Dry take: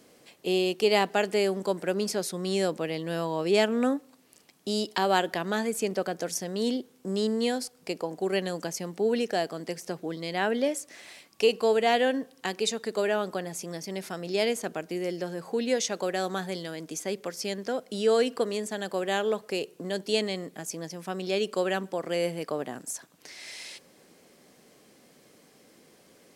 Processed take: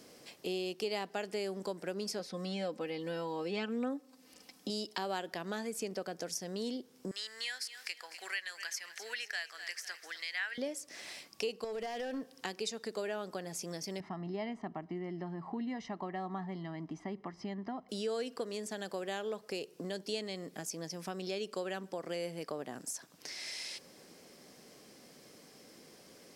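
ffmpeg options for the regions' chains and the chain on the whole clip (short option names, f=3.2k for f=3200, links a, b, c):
-filter_complex "[0:a]asettb=1/sr,asplit=3[a][b][c];[a]atrim=end=2.194[d];[b]atrim=start=2.19:end=4.7,asetpts=PTS-STARTPTS,afade=t=in:d=0.004:c=qsin,afade=t=out:st=2.506:d=0.004:c=qsin,acrossover=split=4200[e][f];[f]acompressor=threshold=-54dB:ratio=4:attack=1:release=60[g];[e][g]amix=inputs=2:normalize=0,aecho=1:1:3.9:0.7,atrim=end_sample=110691[h];[c]atrim=start=4.696[i];[d][h]acrossfade=d=0.004:c1=hsin:c2=qsin[j];[j][i]acrossfade=d=0.004:c1=qsin:c2=hsin,asettb=1/sr,asplit=3[k][l][m];[k]atrim=end=7.114[n];[l]atrim=start=7.11:end=10.58,asetpts=PTS-STARTPTS,afade=t=in:d=0.004:c=qsin,afade=t=out:st=3.466:d=0.004:c=qsin,acompressor=mode=upward:threshold=-39dB:ratio=2.5:attack=3.2:release=140:knee=2.83:detection=peak,highpass=f=1.8k:t=q:w=3.3,aecho=1:1:249|498|747|996:0.158|0.0729|0.0335|0.0154,atrim=end_sample=153027[o];[m]atrim=start=10.576[p];[n][o]acrossfade=d=0.004:c1=hsin:c2=qsin[q];[q][p]acrossfade=d=0.004:c1=qsin:c2=hsin,asettb=1/sr,asplit=3[r][s][t];[r]atrim=end=11.644[u];[s]atrim=start=11.64:end=12.33,asetpts=PTS-STARTPTS,afade=t=in:d=0.004:c=qsin,afade=t=out:st=0.686:d=0.004:c=qsin,acompressor=threshold=-25dB:ratio=12:attack=3.2:release=140:knee=1:detection=peak,aeval=exprs='clip(val(0),-1,0.0447)':c=same[v];[t]atrim=start=12.326[w];[u][v]acrossfade=d=0.004:c1=hsin:c2=qsin[x];[x][w]acrossfade=d=0.004:c1=qsin:c2=hsin,asettb=1/sr,asplit=3[y][z][aa];[y]atrim=end=14.004[ab];[z]atrim=start=14:end=17.89,asetpts=PTS-STARTPTS,afade=t=in:d=0.004:c=qsin,afade=t=out:st=3.886:d=0.004:c=qsin,lowpass=1.4k,aecho=1:1:1:0.91,atrim=end_sample=171549[ac];[aa]atrim=start=17.886[ad];[ab][ac]acrossfade=d=0.004:c1=hsin:c2=qsin[ae];[ae][ad]acrossfade=d=0.004:c1=qsin:c2=hsin,equalizer=f=5.2k:w=3.4:g=6.5,acompressor=threshold=-40dB:ratio=2.5"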